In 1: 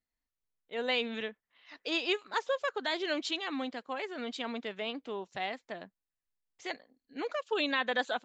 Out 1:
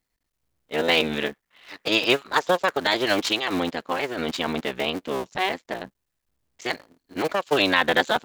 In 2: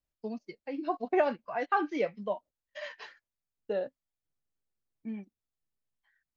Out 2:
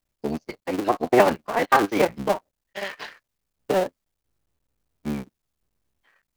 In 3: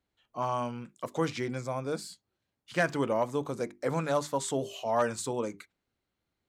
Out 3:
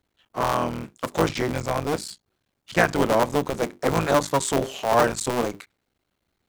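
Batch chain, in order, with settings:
cycle switcher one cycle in 3, muted; match loudness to -24 LUFS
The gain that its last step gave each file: +12.5, +11.5, +9.5 dB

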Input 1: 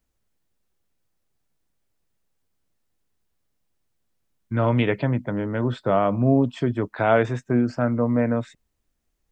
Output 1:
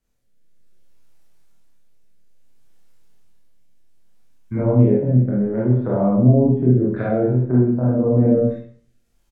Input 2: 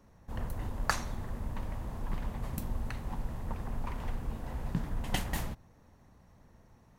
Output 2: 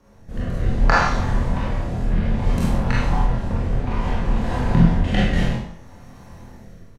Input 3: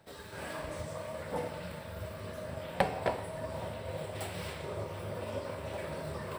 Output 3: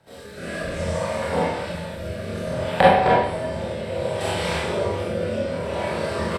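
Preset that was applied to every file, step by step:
treble ducked by the level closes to 430 Hz, closed at -20.5 dBFS; doubler 24 ms -3.5 dB; Schroeder reverb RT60 0.55 s, combs from 32 ms, DRR -4.5 dB; AGC gain up to 5 dB; rotary speaker horn 0.6 Hz; normalise peaks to -1.5 dBFS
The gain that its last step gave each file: 0.0, +7.5, +4.0 dB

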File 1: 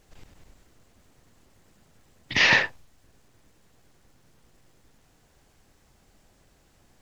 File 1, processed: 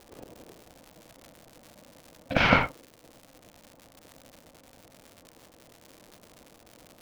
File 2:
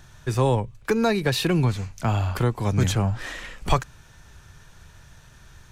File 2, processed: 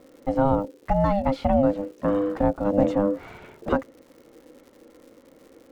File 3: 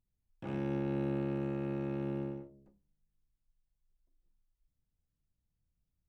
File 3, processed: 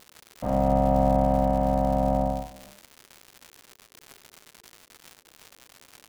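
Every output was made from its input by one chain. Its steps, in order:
band-pass 210 Hz, Q 0.51; crackle 280/s -48 dBFS; ring modulator 400 Hz; match loudness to -24 LUFS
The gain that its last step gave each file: +12.0, +5.0, +17.0 dB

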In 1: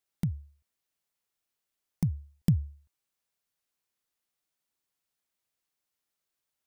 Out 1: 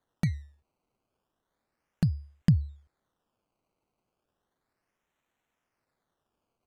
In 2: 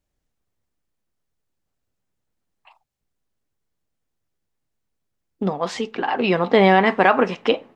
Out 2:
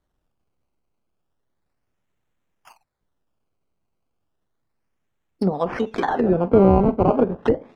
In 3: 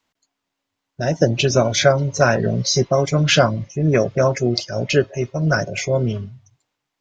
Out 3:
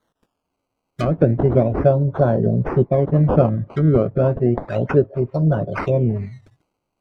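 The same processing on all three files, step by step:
decimation with a swept rate 17×, swing 100% 0.33 Hz; treble ducked by the level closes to 570 Hz, closed at -17 dBFS; gain +2.5 dB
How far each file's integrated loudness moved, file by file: +2.5, -0.5, 0.0 LU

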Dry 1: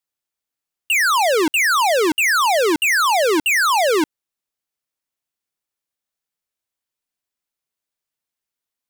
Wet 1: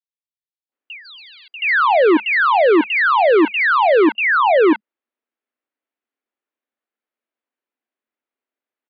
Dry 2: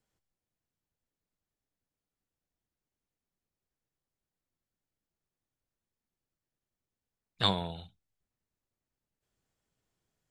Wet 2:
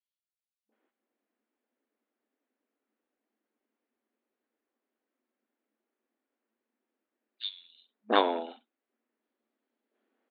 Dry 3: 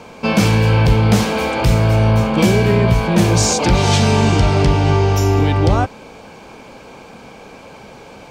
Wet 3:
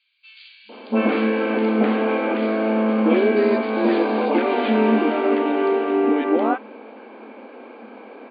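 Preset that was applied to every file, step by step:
air absorption 480 m; three bands offset in time highs, lows, mids 0.69/0.72 s, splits 930/3800 Hz; FFT band-pass 210–4800 Hz; normalise peaks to -6 dBFS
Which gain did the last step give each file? +7.0, +12.0, +1.5 dB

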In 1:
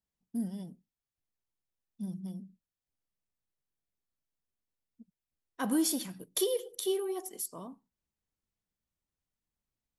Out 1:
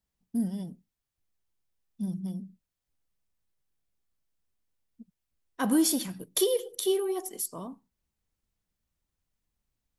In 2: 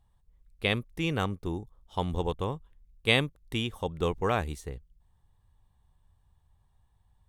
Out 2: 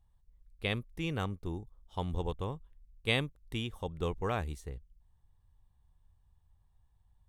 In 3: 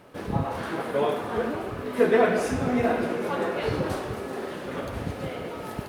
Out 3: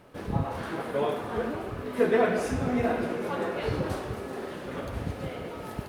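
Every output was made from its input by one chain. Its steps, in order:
low shelf 89 Hz +7.5 dB; normalise peaks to -12 dBFS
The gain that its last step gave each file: +4.5, -6.5, -3.5 dB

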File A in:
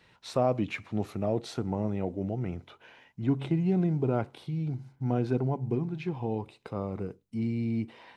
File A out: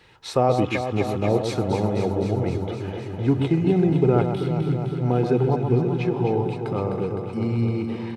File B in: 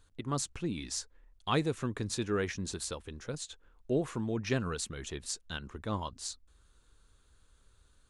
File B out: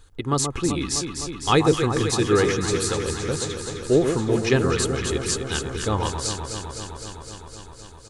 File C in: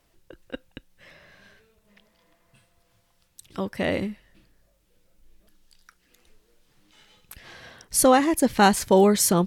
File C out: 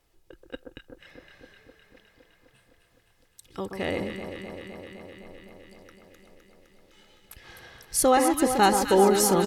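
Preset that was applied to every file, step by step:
comb 2.4 ms, depth 36%; on a send: echo with dull and thin repeats by turns 0.128 s, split 1300 Hz, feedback 87%, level -6 dB; on the sum: match loudness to -23 LUFS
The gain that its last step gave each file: +7.0, +11.0, -3.5 dB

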